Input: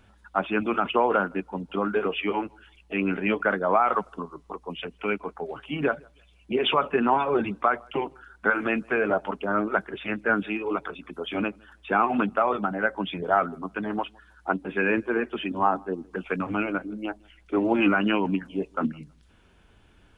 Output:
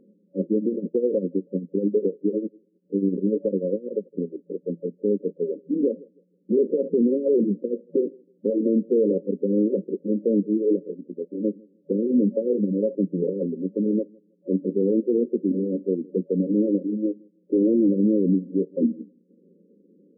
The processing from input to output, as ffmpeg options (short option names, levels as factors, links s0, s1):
-filter_complex "[0:a]asettb=1/sr,asplit=3[s0][s1][s2];[s0]atrim=end=0.564[s3];[s1]atrim=start=0.56:end=4.13,asetpts=PTS-STARTPTS,afade=t=in:d=0.004:c=qsin,afade=t=out:st=3.566:d=0.004:c=qsin,tremolo=f=10:d=0.74[s4];[s2]atrim=start=4.126[s5];[s3][s4]acrossfade=d=0.004:c1=hsin:c2=qsin[s6];[s6][s5]acrossfade=d=0.004:c1=qsin:c2=hsin,asplit=2[s7][s8];[s7]atrim=end=11.44,asetpts=PTS-STARTPTS,afade=t=out:st=10.81:d=0.63:silence=0.266073[s9];[s8]atrim=start=11.44,asetpts=PTS-STARTPTS,afade=t=in:d=0.004:c=hsin:silence=0.266073[s10];[s9][s10]concat=n=2:v=0:a=1,afftfilt=real='re*between(b*sr/4096,170,560)':imag='im*between(b*sr/4096,170,560)':win_size=4096:overlap=0.75,alimiter=limit=0.0891:level=0:latency=1:release=40,volume=2.66"